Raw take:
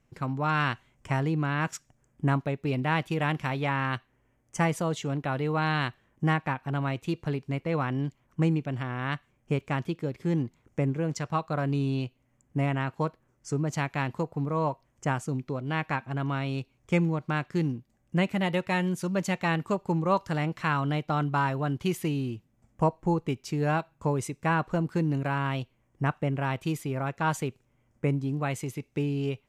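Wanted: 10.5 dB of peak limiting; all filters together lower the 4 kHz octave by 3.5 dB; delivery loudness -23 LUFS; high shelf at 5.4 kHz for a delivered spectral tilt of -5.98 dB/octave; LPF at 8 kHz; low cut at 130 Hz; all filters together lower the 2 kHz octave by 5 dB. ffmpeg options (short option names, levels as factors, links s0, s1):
-af "highpass=130,lowpass=8000,equalizer=f=2000:t=o:g=-6.5,equalizer=f=4000:t=o:g=-3.5,highshelf=f=5400:g=5,volume=3.35,alimiter=limit=0.282:level=0:latency=1"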